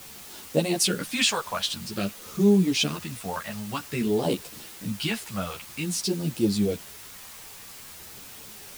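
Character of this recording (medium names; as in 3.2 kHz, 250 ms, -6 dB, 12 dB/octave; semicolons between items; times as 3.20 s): phasing stages 2, 0.51 Hz, lowest notch 300–1900 Hz; a quantiser's noise floor 8-bit, dither triangular; a shimmering, thickened sound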